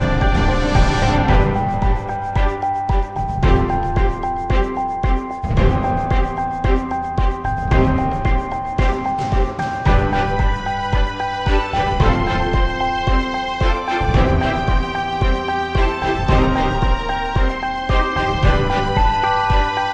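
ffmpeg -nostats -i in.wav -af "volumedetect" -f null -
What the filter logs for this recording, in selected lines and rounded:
mean_volume: -16.7 dB
max_volume: -2.1 dB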